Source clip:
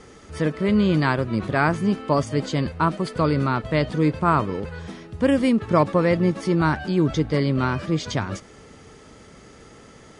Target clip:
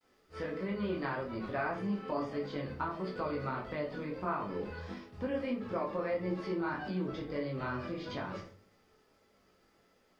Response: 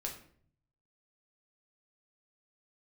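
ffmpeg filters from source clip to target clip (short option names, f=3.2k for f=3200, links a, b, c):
-filter_complex "[0:a]acrossover=split=3500[a][b];[b]acompressor=threshold=-55dB:ratio=4:attack=1:release=60[c];[a][c]amix=inputs=2:normalize=0,equalizer=f=4.9k:t=o:w=0.52:g=11.5,agate=range=-33dB:threshold=-35dB:ratio=3:detection=peak,flanger=delay=20:depth=3.9:speed=1.6,alimiter=limit=-15.5dB:level=0:latency=1:release=185,acompressor=threshold=-31dB:ratio=2,acrusher=bits=10:mix=0:aa=0.000001,bass=f=250:g=-9,treble=f=4k:g=-10[d];[1:a]atrim=start_sample=2205,asetrate=66150,aresample=44100[e];[d][e]afir=irnorm=-1:irlink=0,volume=1dB"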